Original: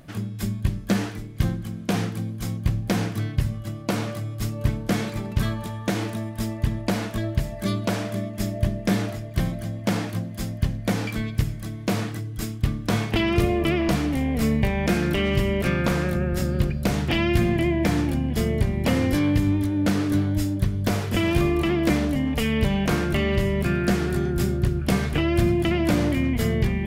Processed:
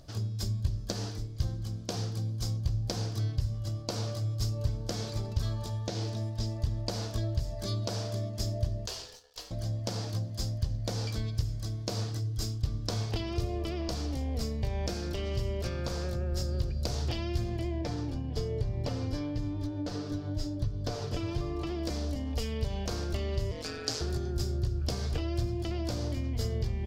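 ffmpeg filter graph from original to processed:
-filter_complex "[0:a]asettb=1/sr,asplit=3[a][b][c];[a]atrim=end=5.704[d];[b]atrim=start=5.7:end=6.56,asetpts=PTS-STARTPTS,afade=t=in:d=0.004:c=qsin,afade=t=out:st=0.856:d=0.004:c=qsin,acrossover=split=6700[e][f];[f]acompressor=threshold=-53dB:ratio=4:attack=1:release=60[g];[e][g]amix=inputs=2:normalize=0,equalizer=f=1.2k:w=2:g=-4[h];[c]atrim=start=6.556[i];[d][h]acrossfade=d=0.004:c1=hsin:c2=qsin[j];[j][i]acrossfade=d=0.004:c1=qsin:c2=hsin,asettb=1/sr,asplit=3[k][l][m];[k]atrim=end=8.864[n];[l]atrim=start=8.86:end=9.51,asetpts=PTS-STARTPTS,afade=t=in:d=0.004:c=qsin,afade=t=out:st=0.646:d=0.004:c=qsin,highpass=940,aeval=exprs='sgn(val(0))*max(abs(val(0))-0.00188,0)':c=same,aeval=exprs='val(0)*sin(2*PI*1100*n/s)':c=same[o];[m]atrim=start=9.506[p];[n][o]acrossfade=d=0.004:c1=hsin:c2=qsin[q];[q][p]acrossfade=d=0.004:c1=qsin:c2=hsin,asettb=1/sr,asplit=3[r][s][t];[r]atrim=end=17.814[u];[s]atrim=start=17.81:end=21.67,asetpts=PTS-STARTPTS,afade=t=in:d=0.004:c=qsin,afade=t=out:st=3.856:d=0.004:c=qsin,lowpass=f=3k:p=1,aecho=1:1:6.8:0.47,atrim=end_sample=170226[v];[t]atrim=start=21.666[w];[u][v]acrossfade=d=0.004:c1=hsin:c2=qsin[x];[x][w]acrossfade=d=0.004:c1=qsin:c2=hsin,asettb=1/sr,asplit=3[y][z][aa];[y]atrim=end=23.514[ab];[z]atrim=start=23.51:end=24.01,asetpts=PTS-STARTPTS,afade=t=in:d=0.004:c=qsin,afade=t=out:st=0.496:d=0.004:c=qsin,lowpass=6k,aeval=exprs='val(0)*sin(2*PI*78*n/s)':c=same,aemphasis=mode=production:type=riaa[ac];[aa]atrim=start=24.006[ad];[ab][ac]acrossfade=d=0.004:c1=hsin:c2=qsin[ae];[ae][ad]acrossfade=d=0.004:c1=qsin:c2=hsin,bandreject=f=50:t=h:w=6,bandreject=f=100:t=h:w=6,bandreject=f=150:t=h:w=6,bandreject=f=200:t=h:w=6,bandreject=f=250:t=h:w=6,bandreject=f=300:t=h:w=6,acompressor=threshold=-25dB:ratio=6,firequalizer=gain_entry='entry(110,0);entry(160,-13);entry(470,-5);entry(2100,-16);entry(4800,5);entry(9600,-10)':delay=0.05:min_phase=1,volume=1dB"

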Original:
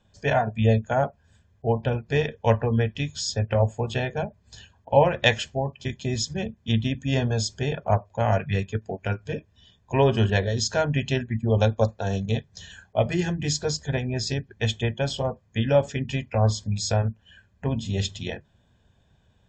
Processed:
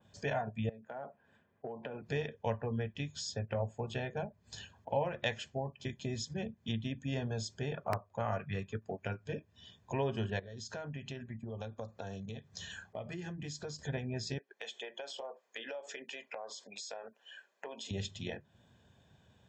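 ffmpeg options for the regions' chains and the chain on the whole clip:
-filter_complex "[0:a]asettb=1/sr,asplit=3[a][b][c];[a]atrim=end=0.694[d];[b]atrim=start=0.69:end=2.02,asetpts=PTS-STARTPTS,afade=t=in:d=0.004:c=qsin,afade=t=out:st=1.326:d=0.004:c=qsin,acrossover=split=190 2700:gain=0.112 1 0.0708[e][f][g];[e][f][g]amix=inputs=3:normalize=0,acompressor=threshold=-33dB:ratio=16:attack=3.2:release=140:knee=1:detection=peak[h];[c]atrim=start=2.016[i];[d][h]acrossfade=d=0.004:c1=hsin:c2=qsin[j];[j][i]acrossfade=d=0.004:c1=qsin:c2=hsin,asettb=1/sr,asplit=3[k][l][m];[k]atrim=end=7.644[n];[l]atrim=start=7.64:end=9,asetpts=PTS-STARTPTS,afade=t=in:d=0.004:c=qsin,afade=t=out:st=1.356:d=0.004:c=qsin,equalizer=f=1.2k:w=5.3:g=10,aeval=exprs='(mod(2.66*val(0)+1,2)-1)/2.66':c=same[o];[m]atrim=start=8.996[p];[n][o]acrossfade=d=0.004:c1=hsin:c2=qsin[q];[q][p]acrossfade=d=0.004:c1=qsin:c2=hsin,asettb=1/sr,asplit=3[r][s][t];[r]atrim=end=10.394[u];[s]atrim=start=10.39:end=13.79,asetpts=PTS-STARTPTS,afade=t=in:d=0.004:c=qsin,afade=t=out:st=3.396:d=0.004:c=qsin,equalizer=f=1.2k:w=6.2:g=5.5,acompressor=threshold=-38dB:ratio=3:attack=3.2:release=140:knee=1:detection=peak[v];[t]atrim=start=13.786[w];[u][v]acrossfade=d=0.004:c1=hsin:c2=qsin[x];[x][w]acrossfade=d=0.004:c1=qsin:c2=hsin,asettb=1/sr,asplit=3[y][z][aa];[y]atrim=end=14.384[ab];[z]atrim=start=14.38:end=17.91,asetpts=PTS-STARTPTS,afade=t=in:d=0.004:c=qsin,afade=t=out:st=3.526:d=0.004:c=qsin,highpass=f=430:w=0.5412,highpass=f=430:w=1.3066,acompressor=threshold=-37dB:ratio=6:attack=3.2:release=140:knee=1:detection=peak[ac];[aa]atrim=start=17.906[ad];[ab][ac]acrossfade=d=0.004:c1=hsin:c2=qsin[ae];[ae][ad]acrossfade=d=0.004:c1=qsin:c2=hsin,acompressor=threshold=-42dB:ratio=2,highpass=100,adynamicequalizer=threshold=0.00178:dfrequency=2800:dqfactor=0.7:tfrequency=2800:tqfactor=0.7:attack=5:release=100:ratio=0.375:range=2:mode=cutabove:tftype=highshelf"

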